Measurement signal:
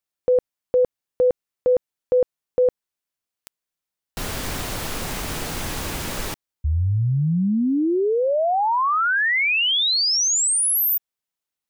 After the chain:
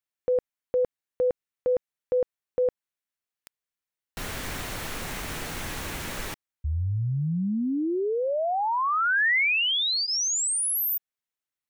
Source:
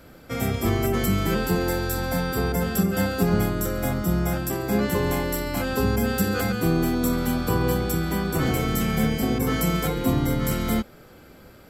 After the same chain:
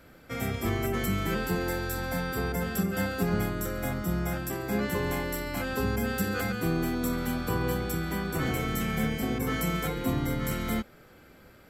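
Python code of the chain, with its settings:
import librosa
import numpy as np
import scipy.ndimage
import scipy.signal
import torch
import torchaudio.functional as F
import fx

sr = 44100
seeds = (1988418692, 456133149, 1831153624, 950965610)

y = fx.peak_eq(x, sr, hz=1900.0, db=4.5, octaves=1.1)
y = fx.notch(y, sr, hz=4900.0, q=23.0)
y = F.gain(torch.from_numpy(y), -6.5).numpy()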